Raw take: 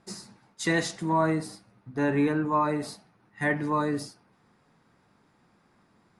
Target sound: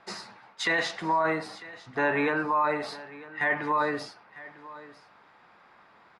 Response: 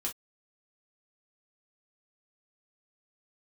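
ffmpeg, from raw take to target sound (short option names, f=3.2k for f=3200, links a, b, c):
-filter_complex "[0:a]acrossover=split=540 4000:gain=0.126 1 0.0794[a][b][c];[a][b][c]amix=inputs=3:normalize=0,asplit=2[d][e];[e]acompressor=threshold=-43dB:ratio=6,volume=-1dB[f];[d][f]amix=inputs=2:normalize=0,alimiter=limit=-23.5dB:level=0:latency=1:release=14,aecho=1:1:949:0.119,volume=6.5dB"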